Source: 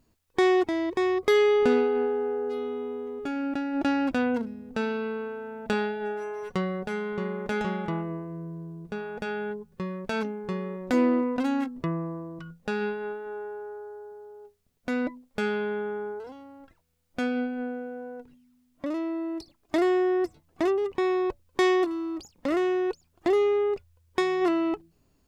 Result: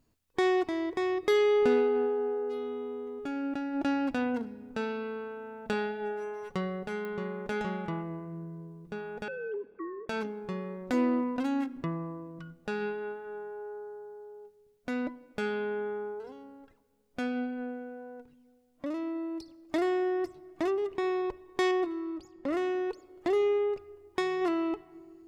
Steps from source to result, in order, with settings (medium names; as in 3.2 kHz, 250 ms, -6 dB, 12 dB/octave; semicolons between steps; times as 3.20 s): 9.28–10.09 s: formants replaced by sine waves; 21.71–22.53 s: treble shelf 2.6 kHz -10 dB; simulated room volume 4000 m³, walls mixed, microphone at 0.33 m; clicks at 7.05 s, -23 dBFS; trim -4.5 dB